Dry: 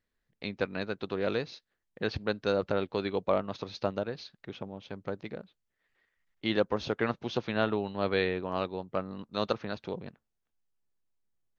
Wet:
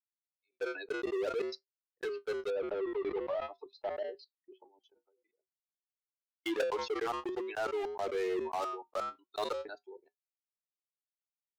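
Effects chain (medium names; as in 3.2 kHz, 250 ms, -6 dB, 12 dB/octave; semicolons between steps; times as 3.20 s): expander on every frequency bin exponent 3; steep high-pass 340 Hz 96 dB/octave; tilt EQ -4 dB/octave; level held to a coarse grid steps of 23 dB; waveshaping leveller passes 5; saturation -19 dBFS, distortion -23 dB; flange 0.5 Hz, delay 5.9 ms, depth 1.3 ms, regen -72%; 2.50–4.74 s: distance through air 330 m; decay stretcher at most 36 dB/s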